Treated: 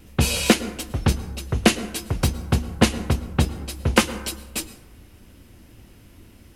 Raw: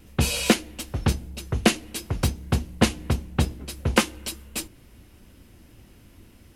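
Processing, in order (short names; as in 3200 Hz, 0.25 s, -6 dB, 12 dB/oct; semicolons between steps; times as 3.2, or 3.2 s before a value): plate-style reverb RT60 0.99 s, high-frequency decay 0.4×, pre-delay 95 ms, DRR 14.5 dB; gain +2.5 dB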